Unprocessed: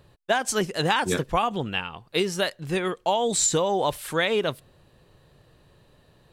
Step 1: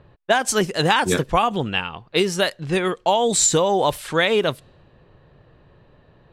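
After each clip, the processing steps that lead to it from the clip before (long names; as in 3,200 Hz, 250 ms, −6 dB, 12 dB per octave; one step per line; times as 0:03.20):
low-pass that shuts in the quiet parts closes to 2,200 Hz, open at −22 dBFS
level +5 dB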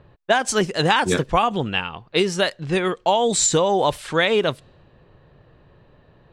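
parametric band 13,000 Hz −14 dB 0.45 octaves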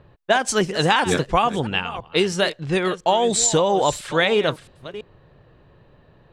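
delay that plays each chunk backwards 334 ms, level −14 dB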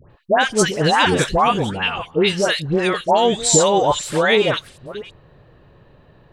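all-pass dispersion highs, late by 107 ms, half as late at 1,300 Hz
level +3 dB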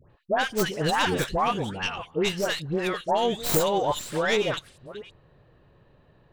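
stylus tracing distortion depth 0.17 ms
level −8.5 dB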